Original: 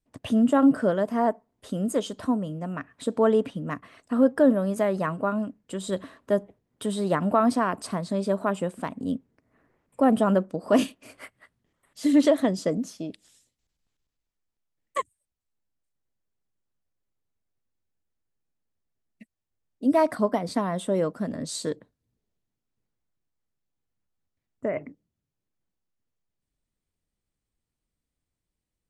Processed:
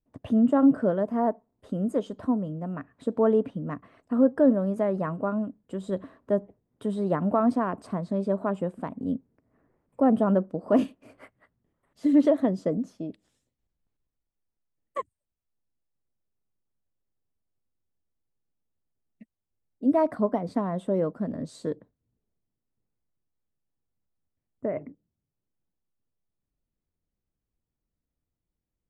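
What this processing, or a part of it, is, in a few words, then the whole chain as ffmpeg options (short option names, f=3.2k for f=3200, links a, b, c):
through cloth: -af "highshelf=f=2k:g=-18"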